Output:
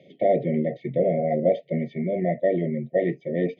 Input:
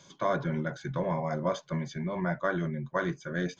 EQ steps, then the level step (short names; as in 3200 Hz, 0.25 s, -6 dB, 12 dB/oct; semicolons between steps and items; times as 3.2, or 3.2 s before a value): brick-wall FIR band-stop 740–1800 Hz; speaker cabinet 130–2700 Hz, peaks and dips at 240 Hz +6 dB, 470 Hz +5 dB, 790 Hz +6 dB, 1800 Hz +3 dB; bell 470 Hz +5.5 dB 1 oct; +3.5 dB